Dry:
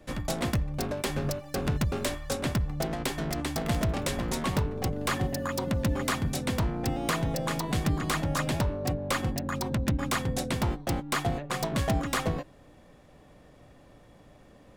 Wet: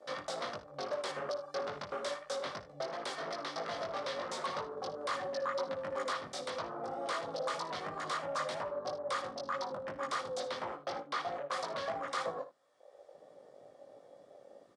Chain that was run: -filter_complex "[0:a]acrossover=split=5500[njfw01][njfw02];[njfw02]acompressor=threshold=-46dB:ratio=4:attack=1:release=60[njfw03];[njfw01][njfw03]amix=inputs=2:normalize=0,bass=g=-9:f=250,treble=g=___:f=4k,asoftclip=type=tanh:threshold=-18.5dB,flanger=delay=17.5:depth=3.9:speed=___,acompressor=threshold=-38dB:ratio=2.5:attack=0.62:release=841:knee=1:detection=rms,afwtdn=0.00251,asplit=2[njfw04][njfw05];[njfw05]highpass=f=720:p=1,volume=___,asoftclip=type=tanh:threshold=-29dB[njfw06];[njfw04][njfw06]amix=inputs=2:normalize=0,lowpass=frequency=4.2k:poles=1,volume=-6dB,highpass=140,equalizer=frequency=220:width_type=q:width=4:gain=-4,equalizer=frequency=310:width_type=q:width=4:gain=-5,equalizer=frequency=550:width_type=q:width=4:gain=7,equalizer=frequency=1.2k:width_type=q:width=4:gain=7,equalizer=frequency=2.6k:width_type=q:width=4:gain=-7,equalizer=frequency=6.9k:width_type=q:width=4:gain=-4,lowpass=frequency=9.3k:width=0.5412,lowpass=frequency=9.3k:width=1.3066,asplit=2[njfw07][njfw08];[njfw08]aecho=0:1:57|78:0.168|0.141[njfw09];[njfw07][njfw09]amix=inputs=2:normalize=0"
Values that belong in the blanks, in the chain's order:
12, 3, 14dB